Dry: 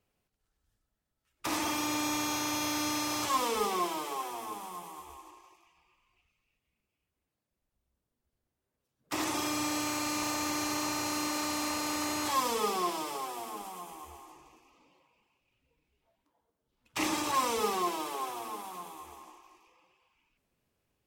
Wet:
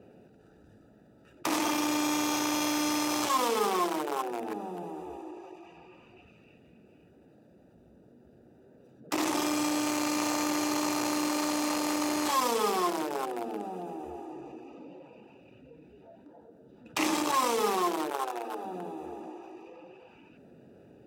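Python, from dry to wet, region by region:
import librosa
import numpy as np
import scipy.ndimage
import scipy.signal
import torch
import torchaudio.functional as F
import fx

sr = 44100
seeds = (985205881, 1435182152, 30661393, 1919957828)

y = fx.chain(x, sr, fx.highpass(hz=490.0, slope=12),
    fx.doubler(ms=25.0, db=-9.0), at=(18.1, 18.64))
y = fx.wiener(y, sr, points=41)
y = scipy.signal.sosfilt(scipy.signal.butter(2, 200.0, 'highpass', fs=sr, output='sos'), y)
y = fx.env_flatten(y, sr, amount_pct=50)
y = F.gain(torch.from_numpy(y), 1.5).numpy()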